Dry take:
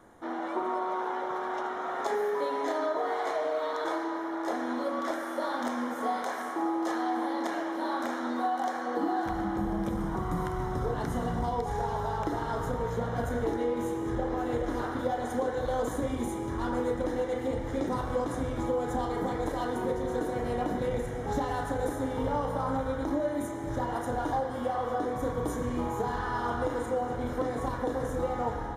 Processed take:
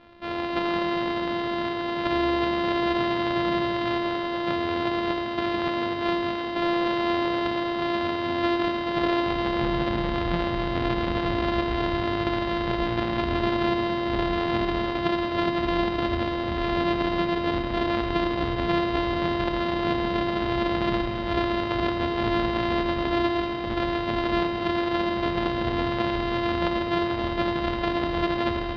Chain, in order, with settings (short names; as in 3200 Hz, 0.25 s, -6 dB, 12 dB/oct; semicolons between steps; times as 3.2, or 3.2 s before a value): sample sorter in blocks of 128 samples; steep low-pass 4100 Hz 36 dB/oct; notches 50/100/150/200/250/300/350 Hz; on a send: reverb RT60 2.3 s, pre-delay 62 ms, DRR 7 dB; on the sum: gain +5 dB